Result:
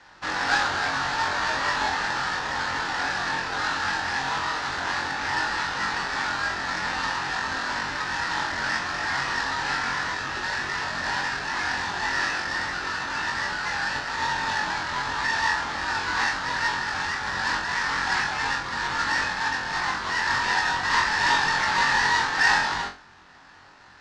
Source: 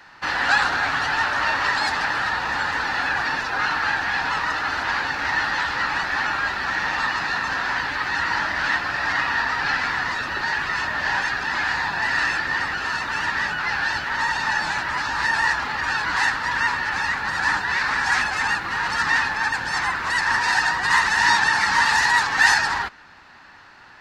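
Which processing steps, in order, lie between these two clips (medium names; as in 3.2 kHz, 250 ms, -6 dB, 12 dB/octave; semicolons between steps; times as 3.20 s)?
square wave that keeps the level; low-pass 5.9 kHz 24 dB/octave; on a send: flutter echo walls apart 3.8 m, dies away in 0.31 s; on the sum: trim -9 dB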